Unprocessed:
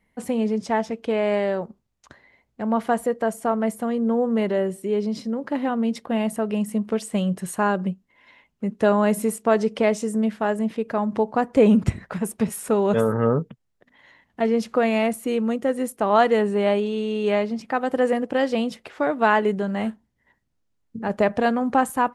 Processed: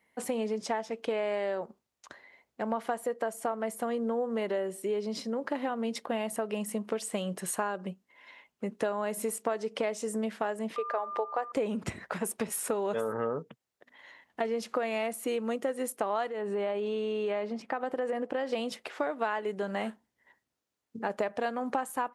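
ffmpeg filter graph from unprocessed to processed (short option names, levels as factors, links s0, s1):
-filter_complex "[0:a]asettb=1/sr,asplit=3[s0][s1][s2];[s0]atrim=end=10.764[s3];[s1]atrim=start=10.76:end=11.52,asetpts=PTS-STARTPTS,afade=t=in:d=0.004:c=qsin,afade=t=out:st=0.756:d=0.004:c=qsin,highpass=f=400:w=0.5412,highpass=f=400:w=1.3066,highshelf=f=5000:g=-11.5,aeval=exprs='val(0)+0.0224*sin(2*PI*1200*n/s)':c=same[s4];[s2]atrim=start=11.516[s5];[s3][s4]acrossfade=d=0.004:c1=hsin:c2=qsin[s6];[s6][s5]acrossfade=d=0.004:c1=qsin:c2=hsin,asettb=1/sr,asplit=3[s7][s8][s9];[s7]atrim=end=16.294[s10];[s8]atrim=start=16.29:end=18.53,asetpts=PTS-STARTPTS,afade=t=in:d=0.004:c=qsin,afade=t=out:st=2.236:d=0.004:c=qsin,highshelf=f=3500:g=-11,acompressor=threshold=0.0794:ratio=5:attack=3.2:release=140:knee=1:detection=peak[s11];[s9]atrim=start=18.526[s12];[s10][s11]acrossfade=d=0.004:c1=hsin:c2=qsin[s13];[s13][s12]acrossfade=d=0.004:c1=qsin:c2=hsin,highpass=59,bass=f=250:g=-14,treble=f=4000:g=1,acompressor=threshold=0.0398:ratio=6"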